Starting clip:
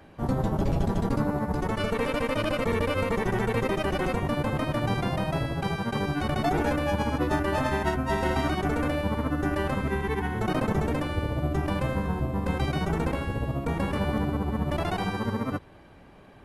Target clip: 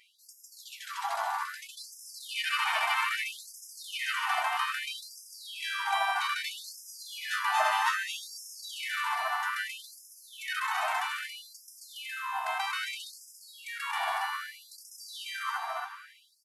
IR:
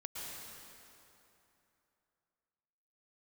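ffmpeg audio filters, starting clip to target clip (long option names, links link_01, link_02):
-filter_complex "[0:a]aecho=1:1:233.2|279.9:0.501|0.562,asplit=2[link_01][link_02];[1:a]atrim=start_sample=2205,adelay=145[link_03];[link_02][link_03]afir=irnorm=-1:irlink=0,volume=-9.5dB[link_04];[link_01][link_04]amix=inputs=2:normalize=0,afftfilt=real='re*gte(b*sr/1024,630*pow(5000/630,0.5+0.5*sin(2*PI*0.62*pts/sr)))':imag='im*gte(b*sr/1024,630*pow(5000/630,0.5+0.5*sin(2*PI*0.62*pts/sr)))':win_size=1024:overlap=0.75,volume=3dB"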